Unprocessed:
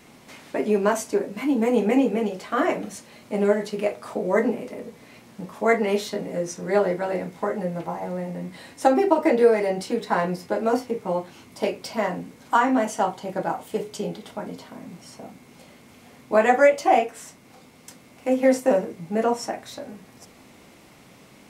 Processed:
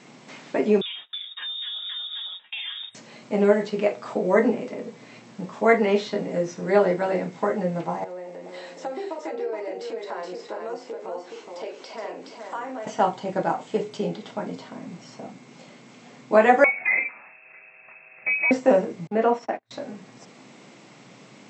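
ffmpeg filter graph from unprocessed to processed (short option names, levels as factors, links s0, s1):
-filter_complex "[0:a]asettb=1/sr,asplit=3[s0][s1][s2];[s0]atrim=end=0.814[s3];[s1]atrim=start=0.81:end=2.95,asetpts=PTS-STARTPTS,afade=t=in:d=0.004:c=qsin,afade=t=out:st=2.136:d=0.004:c=qsin,agate=range=0.0224:threshold=0.0355:ratio=3:release=100:detection=peak,acompressor=threshold=0.0316:ratio=10:attack=3.2:release=140:knee=1:detection=peak,lowpass=f=3300:t=q:w=0.5098,lowpass=f=3300:t=q:w=0.6013,lowpass=f=3300:t=q:w=0.9,lowpass=f=3300:t=q:w=2.563,afreqshift=-3900[s4];[s2]atrim=start=2.946[s5];[s3][s4]acrossfade=d=0.004:c1=hsin:c2=qsin[s6];[s6][s5]acrossfade=d=0.004:c1=qsin:c2=hsin,asettb=1/sr,asplit=3[s7][s8][s9];[s7]atrim=end=8.044[s10];[s8]atrim=start=8.04:end=12.87,asetpts=PTS-STARTPTS,afade=t=in:d=0.004:c=qsin,afade=t=out:st=4.826:d=0.004:c=qsin,lowshelf=f=260:t=q:w=1.5:g=-14,acompressor=threshold=0.0112:ratio=2.5:attack=3.2:release=140:knee=1:detection=peak,aecho=1:1:421:0.562,atrim=end_sample=213003[s11];[s9]atrim=start=12.866[s12];[s10][s11]acrossfade=d=0.004:c1=hsin:c2=qsin[s13];[s13][s12]acrossfade=d=0.004:c1=qsin:c2=hsin,asettb=1/sr,asplit=3[s14][s15][s16];[s14]atrim=end=16.644[s17];[s15]atrim=start=16.64:end=18.51,asetpts=PTS-STARTPTS,afade=t=in:d=0.004:c=qsin,afade=t=out:st=1.866:d=0.004:c=qsin,lowpass=f=2400:t=q:w=0.5098,lowpass=f=2400:t=q:w=0.6013,lowpass=f=2400:t=q:w=0.9,lowpass=f=2400:t=q:w=2.563,afreqshift=-2800,acompressor=threshold=0.0708:ratio=2.5:attack=3.2:release=140:knee=1:detection=peak[s18];[s16]atrim=start=18.506[s19];[s17][s18]acrossfade=d=0.004:c1=hsin:c2=qsin[s20];[s20][s19]acrossfade=d=0.004:c1=qsin:c2=hsin,asettb=1/sr,asplit=3[s21][s22][s23];[s21]atrim=end=19.074[s24];[s22]atrim=start=19.07:end=19.71,asetpts=PTS-STARTPTS,afade=t=in:d=0.004:c=qsin,afade=t=out:st=0.636:d=0.004:c=qsin,agate=range=0.0178:threshold=0.02:ratio=16:release=100:detection=peak,highpass=230,lowpass=3400[s25];[s23]atrim=start=19.706[s26];[s24][s25]acrossfade=d=0.004:c1=hsin:c2=qsin[s27];[s27][s26]acrossfade=d=0.004:c1=qsin:c2=hsin,afftfilt=real='re*between(b*sr/4096,110,8100)':imag='im*between(b*sr/4096,110,8100)':win_size=4096:overlap=0.75,acrossover=split=4600[s28][s29];[s29]acompressor=threshold=0.002:ratio=4:attack=1:release=60[s30];[s28][s30]amix=inputs=2:normalize=0,volume=1.26"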